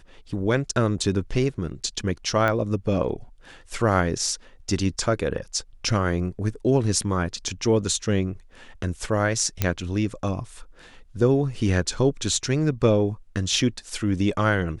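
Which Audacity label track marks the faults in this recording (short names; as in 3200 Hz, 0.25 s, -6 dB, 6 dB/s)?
2.480000	2.480000	pop -12 dBFS
9.620000	9.620000	pop -6 dBFS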